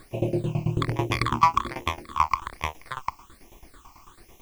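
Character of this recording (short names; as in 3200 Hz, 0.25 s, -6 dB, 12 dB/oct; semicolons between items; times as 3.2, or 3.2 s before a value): tremolo saw down 9.1 Hz, depth 95%; a quantiser's noise floor 10-bit, dither triangular; phasing stages 8, 1.2 Hz, lowest notch 480–1400 Hz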